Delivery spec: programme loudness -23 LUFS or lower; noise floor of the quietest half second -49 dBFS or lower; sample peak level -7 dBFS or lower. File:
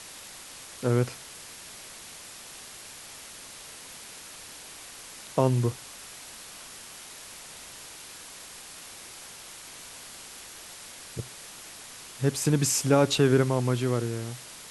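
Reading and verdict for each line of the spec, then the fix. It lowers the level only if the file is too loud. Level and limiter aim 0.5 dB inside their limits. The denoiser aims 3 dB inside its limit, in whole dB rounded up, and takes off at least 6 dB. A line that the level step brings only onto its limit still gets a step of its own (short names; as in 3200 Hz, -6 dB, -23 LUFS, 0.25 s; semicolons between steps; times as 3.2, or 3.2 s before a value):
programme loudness -26.5 LUFS: OK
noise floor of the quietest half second -45 dBFS: fail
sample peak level -9.0 dBFS: OK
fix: denoiser 7 dB, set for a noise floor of -45 dBFS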